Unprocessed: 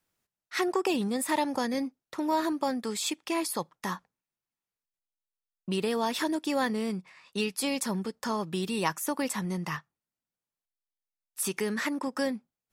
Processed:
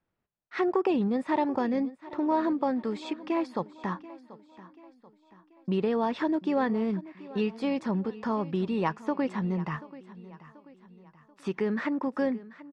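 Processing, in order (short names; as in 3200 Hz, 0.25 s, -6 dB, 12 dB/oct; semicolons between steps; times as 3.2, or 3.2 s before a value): tape spacing loss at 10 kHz 39 dB; feedback echo 0.735 s, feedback 45%, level -18 dB; gain +4 dB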